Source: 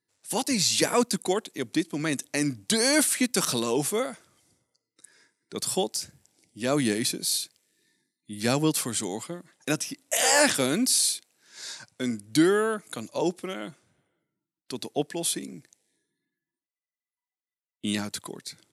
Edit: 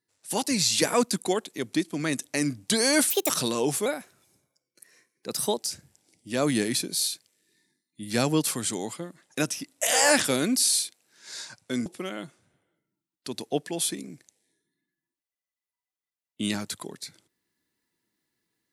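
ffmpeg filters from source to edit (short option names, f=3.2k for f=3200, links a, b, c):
-filter_complex "[0:a]asplit=6[a][b][c][d][e][f];[a]atrim=end=3.104[g];[b]atrim=start=3.1:end=3.41,asetpts=PTS-STARTPTS,asetrate=69237,aresample=44100[h];[c]atrim=start=3.406:end=3.974[i];[d]atrim=start=3.97:end=5.87,asetpts=PTS-STARTPTS,asetrate=48951,aresample=44100,atrim=end_sample=75486,asetpts=PTS-STARTPTS[j];[e]atrim=start=5.866:end=12.162[k];[f]atrim=start=13.298[l];[g][h]acrossfade=d=0.004:c1=hsin:c2=hsin[m];[m][i]acrossfade=d=0.004:c1=hsin:c2=hsin[n];[n][j]acrossfade=d=0.004:c1=hsin:c2=hsin[o];[o][k]acrossfade=d=0.004:c1=hsin:c2=hsin[p];[p][l]acrossfade=d=0.004:c1=hsin:c2=hsin"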